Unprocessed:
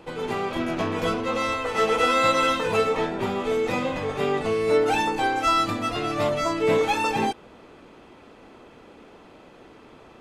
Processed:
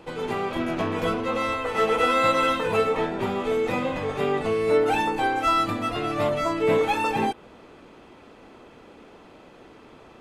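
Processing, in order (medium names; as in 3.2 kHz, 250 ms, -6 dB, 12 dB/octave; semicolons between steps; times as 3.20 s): dynamic bell 5.7 kHz, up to -7 dB, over -45 dBFS, Q 1.1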